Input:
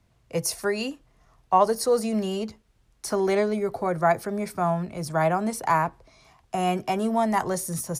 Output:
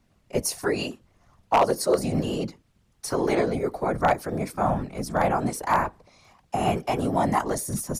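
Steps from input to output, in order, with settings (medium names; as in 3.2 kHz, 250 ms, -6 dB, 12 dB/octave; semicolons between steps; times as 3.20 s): whisper effect; wavefolder -11 dBFS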